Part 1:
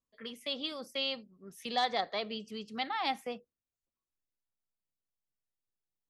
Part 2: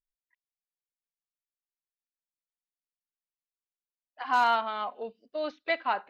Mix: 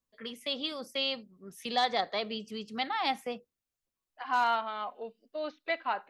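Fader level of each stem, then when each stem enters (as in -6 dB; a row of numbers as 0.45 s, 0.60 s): +2.5 dB, -3.5 dB; 0.00 s, 0.00 s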